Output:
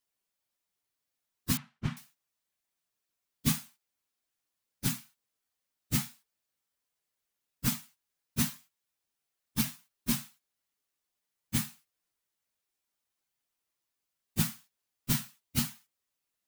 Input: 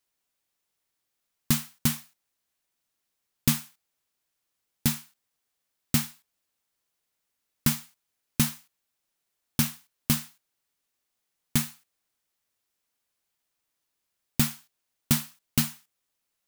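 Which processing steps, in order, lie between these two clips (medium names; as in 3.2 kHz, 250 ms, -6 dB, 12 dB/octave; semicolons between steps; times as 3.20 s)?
phase randomisation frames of 50 ms; 1.57–1.97 s: low-pass 2.2 kHz 12 dB/octave; trim -5 dB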